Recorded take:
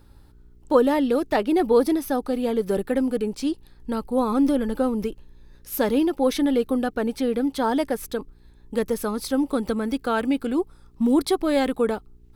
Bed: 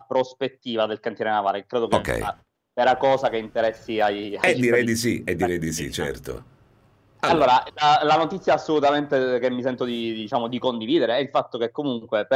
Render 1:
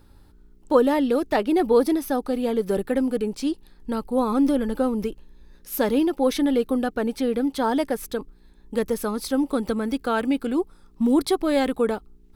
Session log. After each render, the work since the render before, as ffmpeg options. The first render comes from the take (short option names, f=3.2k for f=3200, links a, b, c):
-af "bandreject=f=60:t=h:w=4,bandreject=f=120:t=h:w=4"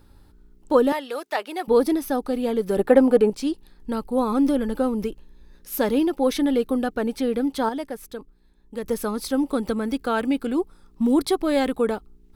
-filter_complex "[0:a]asettb=1/sr,asplit=3[a][b][c];[a]atrim=end=0.924[d];[b]atrim=start=0.92:end=1.68,asetpts=PTS-STARTPTS,afade=t=in:d=0.004:c=qsin,afade=t=out:st=0.756:d=0.004:c=qsin,highpass=740[e];[c]atrim=start=1.676[f];[d][e]acrossfade=d=0.004:c1=hsin:c2=qsin[g];[g][f]acrossfade=d=0.004:c1=qsin:c2=hsin,asettb=1/sr,asplit=3[h][i][j];[h]atrim=end=2.794[k];[i]atrim=start=2.79:end=3.3,asetpts=PTS-STARTPTS,afade=t=in:d=0.004:c=qsin,afade=t=out:st=0.506:d=0.004:c=qsin,equalizer=f=730:t=o:w=2.6:g=12[l];[j]atrim=start=3.296[m];[k][l]acrossfade=d=0.004:c1=hsin:c2=qsin[n];[n][m]acrossfade=d=0.004:c1=qsin:c2=hsin,asplit=3[o][p][q];[o]atrim=end=7.692[r];[p]atrim=start=7.688:end=8.842,asetpts=PTS-STARTPTS,volume=-7dB[s];[q]atrim=start=8.838[t];[r][s]acrossfade=d=0.004:c1=hsin:c2=hsin[u];[u][t]acrossfade=d=0.004:c1=hsin:c2=hsin"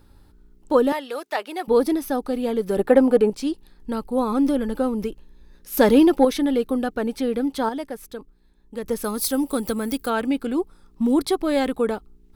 -filter_complex "[0:a]asettb=1/sr,asplit=3[a][b][c];[a]atrim=end=5.774[d];[b]atrim=start=5.77:end=6.25,asetpts=PTS-STARTPTS,afade=t=in:d=0.004:c=qsin,afade=t=out:st=0.476:d=0.004:c=qsin,acontrast=84[e];[c]atrim=start=6.246[f];[d][e]acrossfade=d=0.004:c1=hsin:c2=qsin[g];[g][f]acrossfade=d=0.004:c1=qsin:c2=hsin,asettb=1/sr,asplit=3[h][i][j];[h]atrim=end=9.044[k];[i]atrim=start=9.04:end=10.1,asetpts=PTS-STARTPTS,afade=t=in:d=0.004:c=qsin,afade=t=out:st=1.056:d=0.004:c=qsin,aemphasis=mode=production:type=50fm[l];[j]atrim=start=10.096[m];[k][l]acrossfade=d=0.004:c1=hsin:c2=qsin[n];[n][m]acrossfade=d=0.004:c1=qsin:c2=hsin"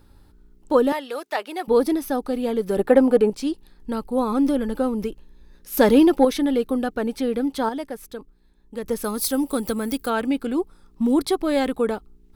-af anull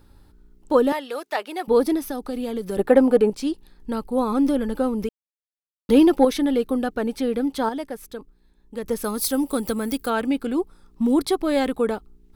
-filter_complex "[0:a]asettb=1/sr,asplit=3[a][b][c];[a]atrim=end=2.044[d];[b]atrim=start=2.04:end=2.77,asetpts=PTS-STARTPTS,afade=t=in:d=0.004:c=qsin,afade=t=out:st=0.726:d=0.004:c=qsin,acrossover=split=180|3000[e][f][g];[f]acompressor=threshold=-25dB:ratio=6:attack=3.2:release=140:knee=2.83:detection=peak[h];[e][h][g]amix=inputs=3:normalize=0[i];[c]atrim=start=2.766[j];[d][i]acrossfade=d=0.004:c1=hsin:c2=qsin[k];[k][j]acrossfade=d=0.004:c1=qsin:c2=hsin,asplit=3[l][m][n];[l]atrim=end=5.09,asetpts=PTS-STARTPTS,afade=t=out:st=5.086:d=0.004:c=hsin[o];[m]atrim=start=5.09:end=5.89,asetpts=PTS-STARTPTS,volume=0[p];[n]atrim=start=5.89,asetpts=PTS-STARTPTS,afade=t=in:d=0.004:c=hsin[q];[o][p][q]concat=n=3:v=0:a=1"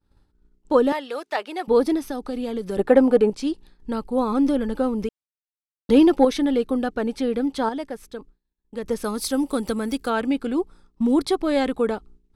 -af "agate=range=-33dB:threshold=-42dB:ratio=3:detection=peak,lowpass=8.5k"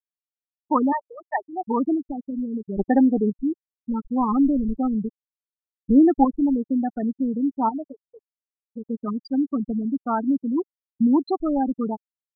-af "afftfilt=real='re*gte(hypot(re,im),0.2)':imag='im*gte(hypot(re,im),0.2)':win_size=1024:overlap=0.75,aecho=1:1:1:0.79"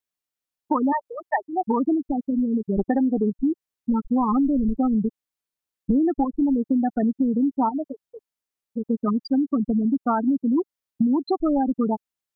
-filter_complex "[0:a]asplit=2[a][b];[b]alimiter=limit=-16.5dB:level=0:latency=1:release=385,volume=1dB[c];[a][c]amix=inputs=2:normalize=0,acompressor=threshold=-18dB:ratio=6"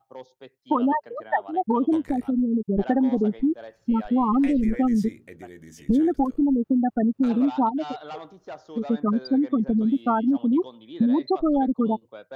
-filter_complex "[1:a]volume=-19.5dB[a];[0:a][a]amix=inputs=2:normalize=0"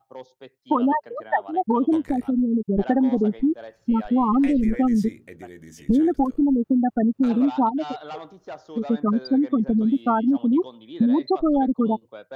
-af "volume=1.5dB"